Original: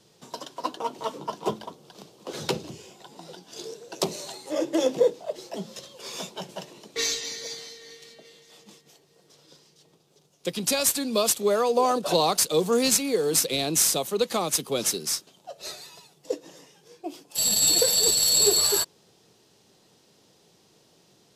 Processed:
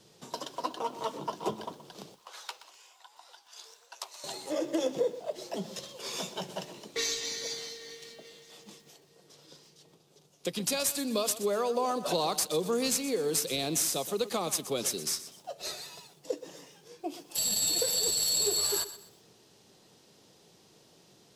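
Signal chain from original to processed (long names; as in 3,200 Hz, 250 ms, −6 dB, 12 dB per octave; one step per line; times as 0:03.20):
downward compressor 2 to 1, threshold −32 dBFS, peak gain reduction 9.5 dB
0:02.14–0:04.24: four-pole ladder high-pass 800 Hz, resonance 35%
feedback echo at a low word length 124 ms, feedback 35%, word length 9 bits, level −14 dB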